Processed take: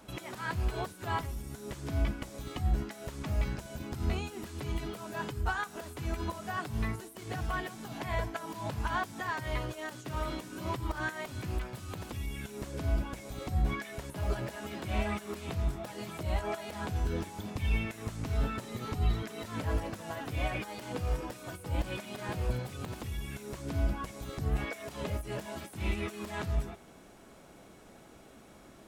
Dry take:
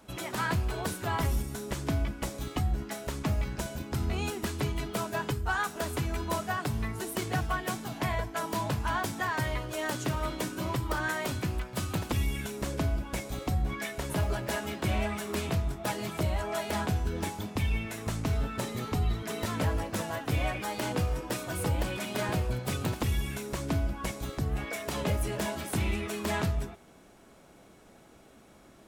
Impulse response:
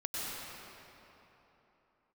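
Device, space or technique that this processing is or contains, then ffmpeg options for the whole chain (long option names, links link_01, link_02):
de-esser from a sidechain: -filter_complex "[0:a]asplit=2[link_01][link_02];[link_02]highpass=frequency=5000:width=0.5412,highpass=frequency=5000:width=1.3066,apad=whole_len=1273190[link_03];[link_01][link_03]sidechaincompress=threshold=-52dB:ratio=12:attack=2.3:release=83,volume=1.5dB"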